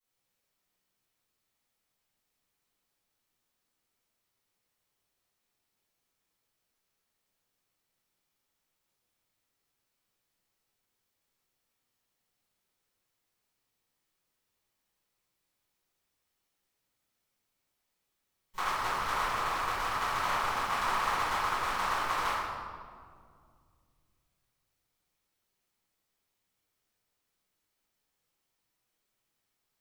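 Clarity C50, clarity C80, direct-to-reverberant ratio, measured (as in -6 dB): -3.5 dB, -0.5 dB, -18.0 dB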